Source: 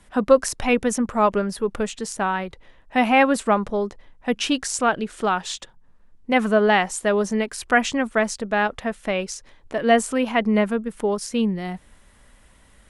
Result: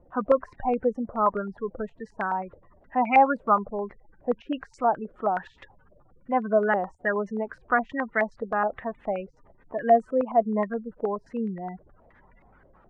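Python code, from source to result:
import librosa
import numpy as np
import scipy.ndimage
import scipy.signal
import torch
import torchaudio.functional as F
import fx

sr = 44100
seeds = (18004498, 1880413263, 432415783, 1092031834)

y = fx.dmg_noise_colour(x, sr, seeds[0], colour='pink', level_db=-50.0)
y = fx.spec_gate(y, sr, threshold_db=-20, keep='strong')
y = fx.filter_held_lowpass(y, sr, hz=9.5, low_hz=570.0, high_hz=2100.0)
y = y * librosa.db_to_amplitude(-8.5)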